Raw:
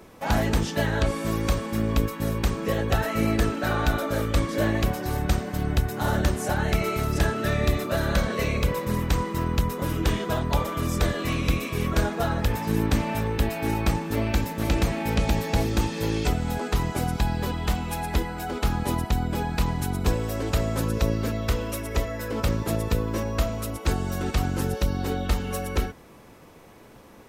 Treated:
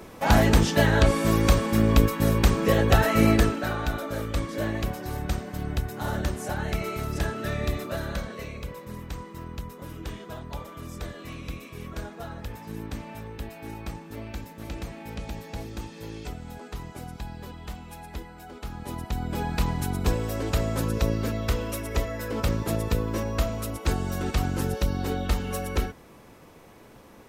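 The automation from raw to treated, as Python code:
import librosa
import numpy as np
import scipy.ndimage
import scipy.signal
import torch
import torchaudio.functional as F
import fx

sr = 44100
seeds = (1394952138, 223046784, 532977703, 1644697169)

y = fx.gain(x, sr, db=fx.line((3.31, 4.5), (3.77, -5.0), (7.87, -5.0), (8.53, -12.5), (18.68, -12.5), (19.46, -1.0)))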